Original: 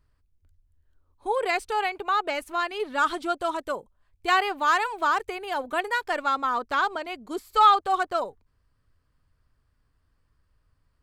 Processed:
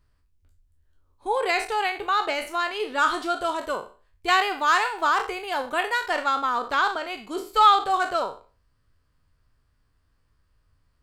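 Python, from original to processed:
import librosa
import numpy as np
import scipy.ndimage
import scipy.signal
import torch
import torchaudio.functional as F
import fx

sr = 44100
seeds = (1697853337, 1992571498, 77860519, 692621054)

y = fx.spec_trails(x, sr, decay_s=0.37)
y = fx.peak_eq(y, sr, hz=4800.0, db=2.5, octaves=2.1)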